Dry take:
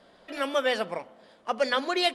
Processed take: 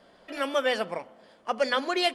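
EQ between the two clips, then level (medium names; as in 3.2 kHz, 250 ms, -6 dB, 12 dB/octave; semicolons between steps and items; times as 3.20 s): band-stop 3.8 kHz, Q 13; 0.0 dB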